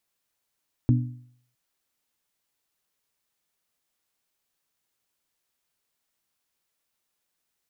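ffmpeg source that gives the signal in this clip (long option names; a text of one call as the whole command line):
ffmpeg -f lavfi -i "aevalsrc='0.188*pow(10,-3*t/0.61)*sin(2*PI*123*t)+0.106*pow(10,-3*t/0.495)*sin(2*PI*246*t)+0.0596*pow(10,-3*t/0.469)*sin(2*PI*295.2*t)':duration=0.66:sample_rate=44100" out.wav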